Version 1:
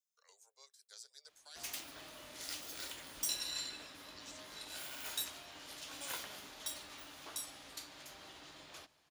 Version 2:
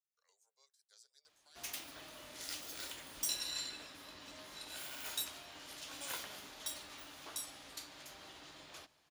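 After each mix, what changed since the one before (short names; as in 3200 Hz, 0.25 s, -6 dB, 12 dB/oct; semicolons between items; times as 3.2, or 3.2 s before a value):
speech -10.0 dB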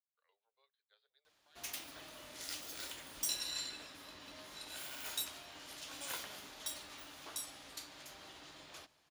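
speech: add steep low-pass 3800 Hz 72 dB/oct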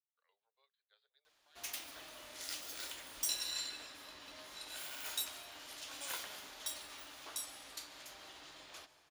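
background: send +8.5 dB; master: add bell 140 Hz -7.5 dB 2.5 oct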